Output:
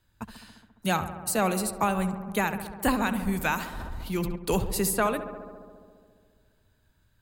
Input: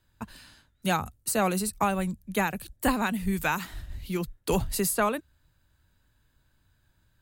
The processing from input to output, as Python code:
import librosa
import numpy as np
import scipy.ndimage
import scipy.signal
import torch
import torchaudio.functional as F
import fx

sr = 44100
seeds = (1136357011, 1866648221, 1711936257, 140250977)

y = fx.echo_filtered(x, sr, ms=69, feedback_pct=82, hz=2400.0, wet_db=-12)
y = fx.sustainer(y, sr, db_per_s=28.0, at=(3.75, 4.36))